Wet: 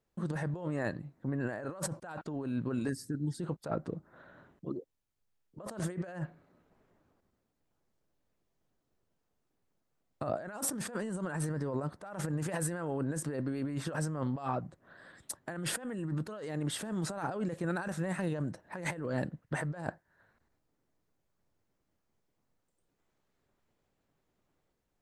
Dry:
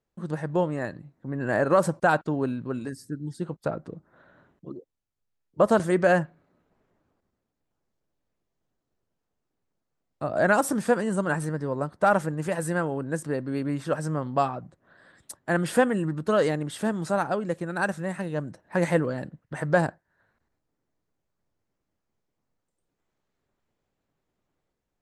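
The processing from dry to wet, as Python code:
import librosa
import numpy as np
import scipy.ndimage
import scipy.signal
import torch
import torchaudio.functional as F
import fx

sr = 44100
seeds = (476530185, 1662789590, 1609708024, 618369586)

y = fx.over_compress(x, sr, threshold_db=-32.0, ratio=-1.0)
y = y * librosa.db_to_amplitude(-4.5)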